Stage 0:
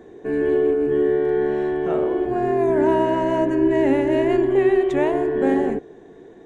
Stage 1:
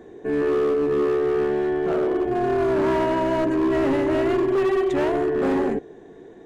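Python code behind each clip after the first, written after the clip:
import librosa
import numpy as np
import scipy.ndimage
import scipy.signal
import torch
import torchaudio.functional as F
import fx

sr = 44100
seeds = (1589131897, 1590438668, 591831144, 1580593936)

y = np.clip(10.0 ** (17.5 / 20.0) * x, -1.0, 1.0) / 10.0 ** (17.5 / 20.0)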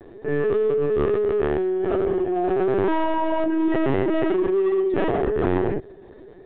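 y = scipy.signal.sosfilt(scipy.signal.butter(2, 87.0, 'highpass', fs=sr, output='sos'), x)
y = fx.lpc_vocoder(y, sr, seeds[0], excitation='pitch_kept', order=16)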